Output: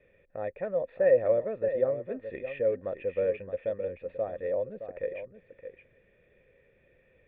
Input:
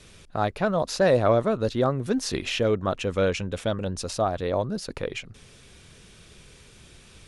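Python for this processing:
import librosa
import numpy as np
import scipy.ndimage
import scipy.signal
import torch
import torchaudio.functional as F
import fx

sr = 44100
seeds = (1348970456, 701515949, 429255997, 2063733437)

y = fx.formant_cascade(x, sr, vowel='e')
y = y + 10.0 ** (-10.5 / 20.0) * np.pad(y, (int(618 * sr / 1000.0), 0))[:len(y)]
y = y * 10.0 ** (2.0 / 20.0)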